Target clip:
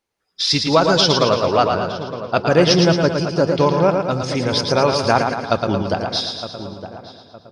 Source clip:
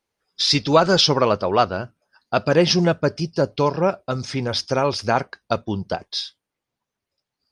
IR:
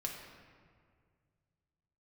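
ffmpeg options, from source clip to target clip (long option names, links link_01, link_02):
-filter_complex "[0:a]asplit=2[link_01][link_02];[link_02]aecho=0:1:112|224|336|448|560|672|784:0.531|0.287|0.155|0.0836|0.0451|0.0244|0.0132[link_03];[link_01][link_03]amix=inputs=2:normalize=0,dynaudnorm=framelen=290:gausssize=9:maxgain=11.5dB,asplit=2[link_04][link_05];[link_05]adelay=913,lowpass=frequency=1400:poles=1,volume=-11.5dB,asplit=2[link_06][link_07];[link_07]adelay=913,lowpass=frequency=1400:poles=1,volume=0.34,asplit=2[link_08][link_09];[link_09]adelay=913,lowpass=frequency=1400:poles=1,volume=0.34,asplit=2[link_10][link_11];[link_11]adelay=913,lowpass=frequency=1400:poles=1,volume=0.34[link_12];[link_06][link_08][link_10][link_12]amix=inputs=4:normalize=0[link_13];[link_04][link_13]amix=inputs=2:normalize=0"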